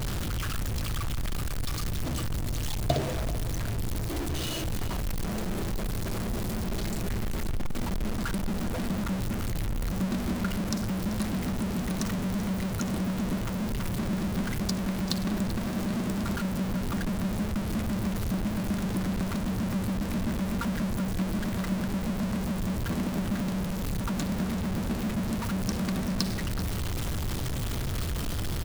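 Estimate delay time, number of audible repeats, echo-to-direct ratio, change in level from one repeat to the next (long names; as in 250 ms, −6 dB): 387 ms, 2, −13.5 dB, −9.0 dB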